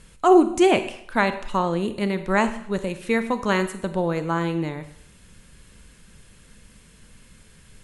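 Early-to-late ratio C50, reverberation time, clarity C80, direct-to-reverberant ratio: 12.0 dB, 0.65 s, 14.5 dB, 10.0 dB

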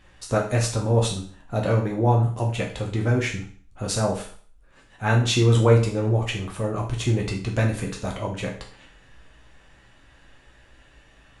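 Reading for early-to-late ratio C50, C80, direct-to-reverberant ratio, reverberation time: 7.5 dB, 13.0 dB, -1.5 dB, 0.45 s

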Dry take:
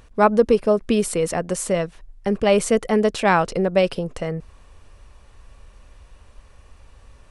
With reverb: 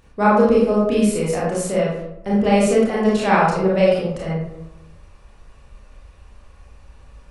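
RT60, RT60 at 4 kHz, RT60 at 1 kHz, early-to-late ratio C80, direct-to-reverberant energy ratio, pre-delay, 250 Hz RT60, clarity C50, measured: 0.80 s, 0.45 s, 0.80 s, 4.5 dB, -6.0 dB, 25 ms, 1.0 s, 0.5 dB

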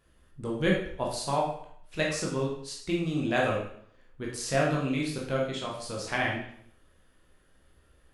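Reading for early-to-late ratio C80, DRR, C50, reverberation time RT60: 7.0 dB, -3.5 dB, 3.0 dB, 0.65 s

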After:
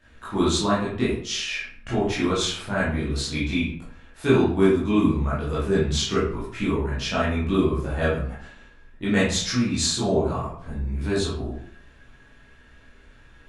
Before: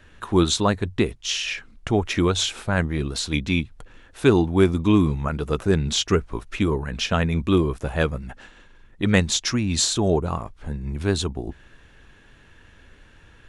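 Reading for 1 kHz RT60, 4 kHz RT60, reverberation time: 0.60 s, 0.35 s, 0.60 s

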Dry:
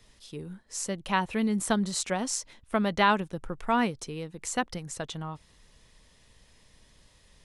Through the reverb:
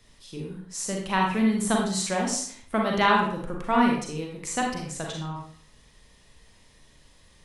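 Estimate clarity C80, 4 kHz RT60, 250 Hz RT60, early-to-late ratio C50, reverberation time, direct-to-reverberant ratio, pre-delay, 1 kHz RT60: 6.5 dB, 0.45 s, 0.60 s, 2.5 dB, 0.55 s, -1.0 dB, 35 ms, 0.55 s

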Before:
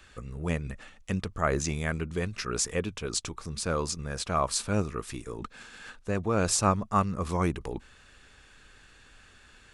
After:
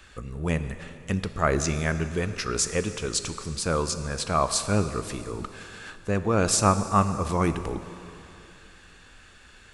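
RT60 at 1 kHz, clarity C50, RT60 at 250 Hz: 2.9 s, 11.0 dB, 3.1 s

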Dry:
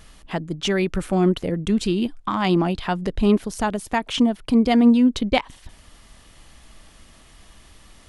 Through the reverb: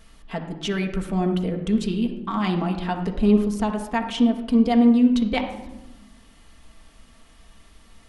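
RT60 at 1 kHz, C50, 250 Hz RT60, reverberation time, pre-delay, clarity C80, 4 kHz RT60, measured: 0.90 s, 7.5 dB, 1.6 s, 1.0 s, 4 ms, 10.0 dB, 0.55 s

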